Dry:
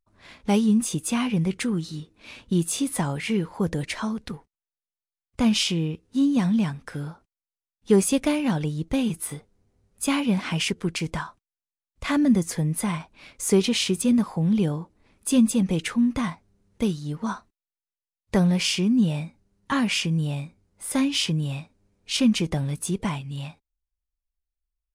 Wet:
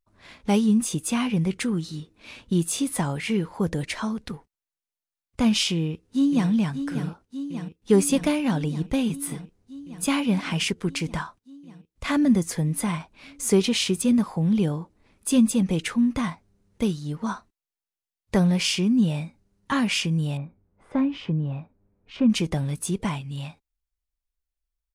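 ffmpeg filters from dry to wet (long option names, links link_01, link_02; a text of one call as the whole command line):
ffmpeg -i in.wav -filter_complex "[0:a]asplit=2[link_01][link_02];[link_02]afade=type=in:start_time=5.73:duration=0.01,afade=type=out:start_time=6.5:duration=0.01,aecho=0:1:590|1180|1770|2360|2950|3540|4130|4720|5310|5900|6490|7080:0.334965|0.267972|0.214378|0.171502|0.137202|0.109761|0.0878092|0.0702473|0.0561979|0.0449583|0.0359666|0.0287733[link_03];[link_01][link_03]amix=inputs=2:normalize=0,asettb=1/sr,asplit=3[link_04][link_05][link_06];[link_04]atrim=end=20.374[link_07];[link_05]atrim=start=20.37:end=22.3,asetpts=PTS-STARTPTS,afade=type=in:duration=0.004:curve=qsin,afade=type=out:start_time=1.926:duration=0.004:curve=qsin,lowpass=1300[link_08];[link_06]atrim=start=22.296[link_09];[link_07][link_08]acrossfade=duration=0.004:curve1=hsin:curve2=qsin[link_10];[link_10][link_09]acrossfade=duration=0.004:curve1=qsin:curve2=hsin" out.wav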